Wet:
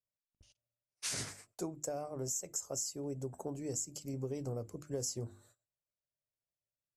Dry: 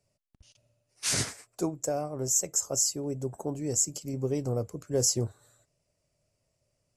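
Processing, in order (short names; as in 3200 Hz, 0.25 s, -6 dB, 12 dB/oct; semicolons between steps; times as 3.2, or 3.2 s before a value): notches 50/100/150/200/250/300/350 Hz; gate -58 dBFS, range -21 dB; compressor, threshold -30 dBFS, peak gain reduction 9 dB; gain -5 dB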